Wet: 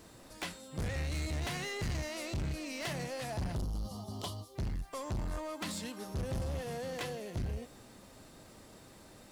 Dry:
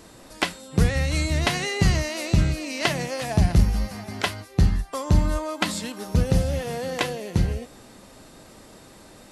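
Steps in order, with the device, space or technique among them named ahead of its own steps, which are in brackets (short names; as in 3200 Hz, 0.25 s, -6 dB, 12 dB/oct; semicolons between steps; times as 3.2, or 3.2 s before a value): spectral delete 3.55–4.56, 1300–2800 Hz; open-reel tape (soft clip -26 dBFS, distortion -4 dB; bell 100 Hz +3.5 dB 1.08 oct; white noise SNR 35 dB); gain -8 dB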